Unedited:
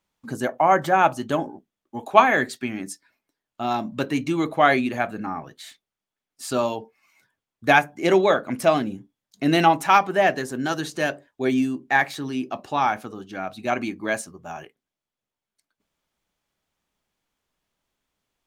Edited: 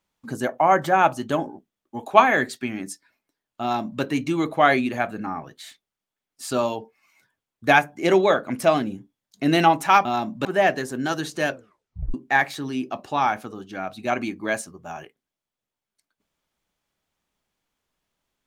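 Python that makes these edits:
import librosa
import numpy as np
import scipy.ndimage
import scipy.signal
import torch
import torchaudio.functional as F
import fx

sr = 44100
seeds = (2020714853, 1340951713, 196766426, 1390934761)

y = fx.edit(x, sr, fx.duplicate(start_s=3.62, length_s=0.4, to_s=10.05),
    fx.tape_stop(start_s=11.1, length_s=0.64), tone=tone)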